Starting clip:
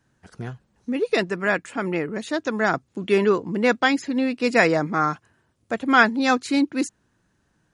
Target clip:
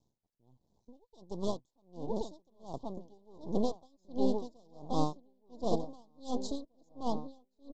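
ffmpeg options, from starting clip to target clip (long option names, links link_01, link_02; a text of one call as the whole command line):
ffmpeg -i in.wav -filter_complex "[0:a]aresample=16000,aeval=exprs='max(val(0),0)':channel_layout=same,aresample=44100,asuperstop=centerf=1900:order=12:qfactor=0.76,asplit=2[link_01][link_02];[link_02]adelay=1076,lowpass=frequency=3000:poles=1,volume=-6dB,asplit=2[link_03][link_04];[link_04]adelay=1076,lowpass=frequency=3000:poles=1,volume=0.47,asplit=2[link_05][link_06];[link_06]adelay=1076,lowpass=frequency=3000:poles=1,volume=0.47,asplit=2[link_07][link_08];[link_08]adelay=1076,lowpass=frequency=3000:poles=1,volume=0.47,asplit=2[link_09][link_10];[link_10]adelay=1076,lowpass=frequency=3000:poles=1,volume=0.47,asplit=2[link_11][link_12];[link_12]adelay=1076,lowpass=frequency=3000:poles=1,volume=0.47[link_13];[link_01][link_03][link_05][link_07][link_09][link_11][link_13]amix=inputs=7:normalize=0,aeval=exprs='val(0)*pow(10,-38*(0.5-0.5*cos(2*PI*1.4*n/s))/20)':channel_layout=same,volume=-3dB" out.wav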